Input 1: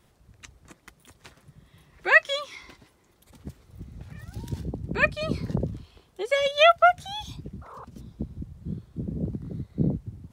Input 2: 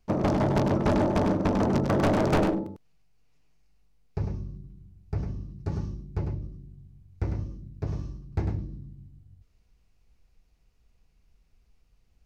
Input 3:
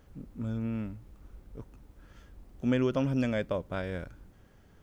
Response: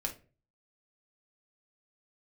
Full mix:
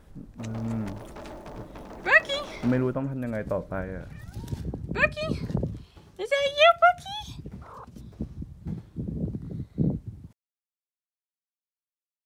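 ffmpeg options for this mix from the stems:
-filter_complex "[0:a]volume=-1.5dB,asplit=2[link_01][link_02];[link_02]volume=-19.5dB[link_03];[1:a]lowshelf=frequency=290:gain=-11.5,acrusher=bits=7:mix=0:aa=0.5,adelay=300,volume=-14dB[link_04];[2:a]tremolo=f=1.1:d=0.52,lowpass=frequency=1900:width=0.5412,lowpass=frequency=1900:width=1.3066,volume=2dB,asplit=2[link_05][link_06];[link_06]volume=-12dB[link_07];[3:a]atrim=start_sample=2205[link_08];[link_03][link_07]amix=inputs=2:normalize=0[link_09];[link_09][link_08]afir=irnorm=-1:irlink=0[link_10];[link_01][link_04][link_05][link_10]amix=inputs=4:normalize=0"

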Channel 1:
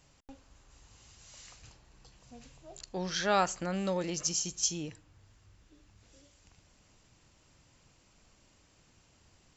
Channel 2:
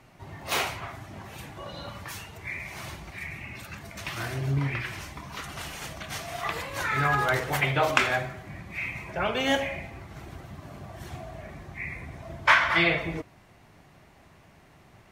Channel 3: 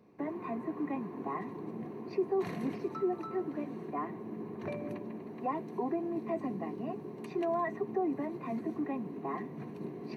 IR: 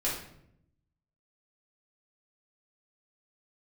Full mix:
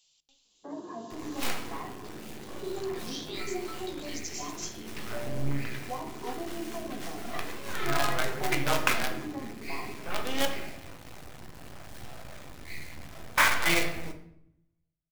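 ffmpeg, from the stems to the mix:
-filter_complex "[0:a]highshelf=frequency=2400:width_type=q:width=3:gain=12.5,volume=-14.5dB,asplit=2[link_01][link_02];[link_02]volume=-21.5dB[link_03];[1:a]acrusher=bits=4:dc=4:mix=0:aa=0.000001,adelay=900,volume=-7dB,asplit=2[link_04][link_05];[link_05]volume=-8.5dB[link_06];[2:a]afwtdn=0.00562,equalizer=frequency=650:width=0.43:gain=4.5,adelay=450,volume=-3.5dB,asplit=2[link_07][link_08];[link_08]volume=-12.5dB[link_09];[link_01][link_07]amix=inputs=2:normalize=0,highpass=frequency=1200:poles=1,acompressor=threshold=-40dB:ratio=6,volume=0dB[link_10];[3:a]atrim=start_sample=2205[link_11];[link_03][link_06][link_09]amix=inputs=3:normalize=0[link_12];[link_12][link_11]afir=irnorm=-1:irlink=0[link_13];[link_04][link_10][link_13]amix=inputs=3:normalize=0"

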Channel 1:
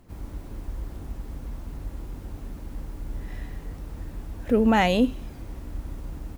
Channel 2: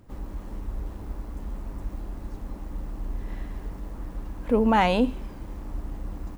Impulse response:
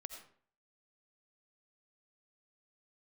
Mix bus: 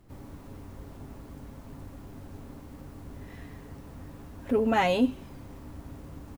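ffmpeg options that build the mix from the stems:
-filter_complex "[0:a]volume=-5.5dB[link_01];[1:a]adelay=7.6,volume=-7dB[link_02];[link_01][link_02]amix=inputs=2:normalize=0"

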